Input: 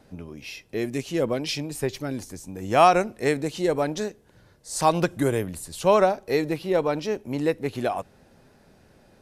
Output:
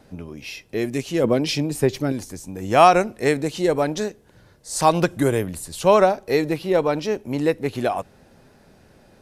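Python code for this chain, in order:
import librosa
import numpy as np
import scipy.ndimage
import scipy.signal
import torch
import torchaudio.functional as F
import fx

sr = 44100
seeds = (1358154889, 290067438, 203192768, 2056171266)

y = fx.peak_eq(x, sr, hz=230.0, db=5.5, octaves=2.9, at=(1.24, 2.12))
y = y * librosa.db_to_amplitude(3.5)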